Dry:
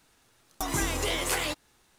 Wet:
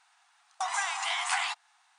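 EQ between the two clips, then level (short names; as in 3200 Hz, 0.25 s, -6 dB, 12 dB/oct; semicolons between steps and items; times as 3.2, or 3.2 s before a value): brick-wall FIR band-pass 680–9800 Hz; high shelf 2800 Hz -9 dB; +4.5 dB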